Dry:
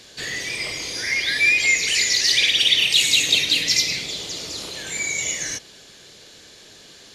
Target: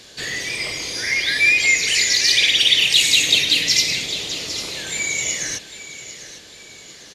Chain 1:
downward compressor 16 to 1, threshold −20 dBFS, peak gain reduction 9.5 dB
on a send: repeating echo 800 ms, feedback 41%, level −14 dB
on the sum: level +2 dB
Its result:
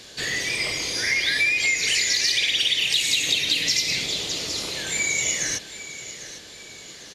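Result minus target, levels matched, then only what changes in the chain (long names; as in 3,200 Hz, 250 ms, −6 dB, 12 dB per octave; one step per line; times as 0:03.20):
downward compressor: peak gain reduction +9.5 dB
remove: downward compressor 16 to 1, threshold −20 dBFS, peak gain reduction 9.5 dB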